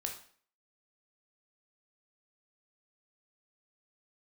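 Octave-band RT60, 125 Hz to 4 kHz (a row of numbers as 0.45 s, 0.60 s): 0.45 s, 0.50 s, 0.50 s, 0.50 s, 0.50 s, 0.45 s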